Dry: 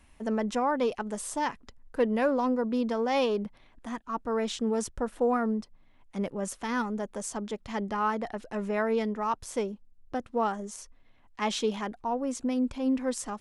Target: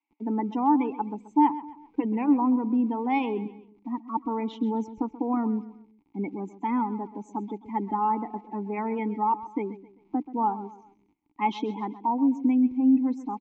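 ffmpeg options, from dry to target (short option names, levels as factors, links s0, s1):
-filter_complex "[0:a]afftdn=nr=25:nf=-36,apsyclip=13.3,acrossover=split=340|780|5600[s0][s1][s2][s3];[s0]acrusher=bits=6:mix=0:aa=0.000001[s4];[s4][s1][s2][s3]amix=inputs=4:normalize=0,aresample=16000,aresample=44100,asplit=3[s5][s6][s7];[s5]bandpass=f=300:t=q:w=8,volume=1[s8];[s6]bandpass=f=870:t=q:w=8,volume=0.501[s9];[s7]bandpass=f=2240:t=q:w=8,volume=0.355[s10];[s8][s9][s10]amix=inputs=3:normalize=0,aecho=1:1:131|262|393:0.168|0.0655|0.0255,volume=0.473"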